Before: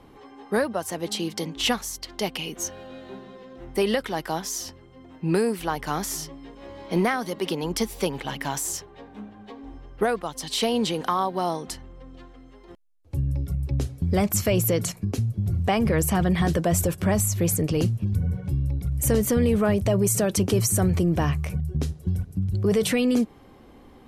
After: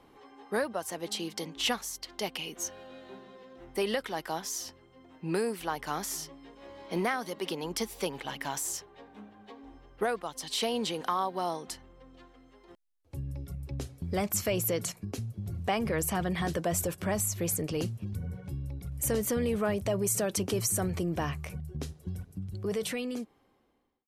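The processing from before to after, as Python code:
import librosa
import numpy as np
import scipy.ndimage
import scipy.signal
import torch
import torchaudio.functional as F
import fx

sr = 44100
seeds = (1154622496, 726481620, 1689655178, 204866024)

y = fx.fade_out_tail(x, sr, length_s=1.83)
y = fx.low_shelf(y, sr, hz=240.0, db=-8.5)
y = y * 10.0 ** (-5.0 / 20.0)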